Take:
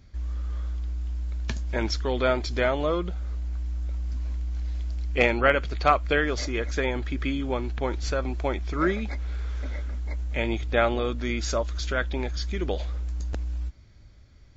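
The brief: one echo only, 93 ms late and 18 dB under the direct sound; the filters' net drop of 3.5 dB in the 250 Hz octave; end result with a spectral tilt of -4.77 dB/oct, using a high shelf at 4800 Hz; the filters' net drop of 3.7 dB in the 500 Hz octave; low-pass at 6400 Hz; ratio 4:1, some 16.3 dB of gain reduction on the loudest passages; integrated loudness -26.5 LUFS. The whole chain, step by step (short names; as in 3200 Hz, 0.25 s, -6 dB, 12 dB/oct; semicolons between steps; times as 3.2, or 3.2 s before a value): LPF 6400 Hz; bell 250 Hz -3 dB; bell 500 Hz -4 dB; high shelf 4800 Hz +8.5 dB; compressor 4:1, threshold -36 dBFS; echo 93 ms -18 dB; gain +13 dB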